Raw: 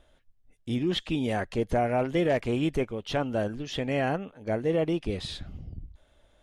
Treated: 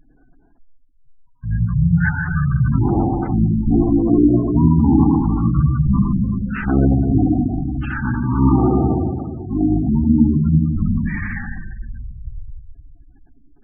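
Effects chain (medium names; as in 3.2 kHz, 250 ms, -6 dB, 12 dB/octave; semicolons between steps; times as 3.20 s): spring tank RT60 1 s, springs 35/49 ms, chirp 70 ms, DRR -2 dB; wide varispeed 0.471×; spectral gate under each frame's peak -20 dB strong; trim +8 dB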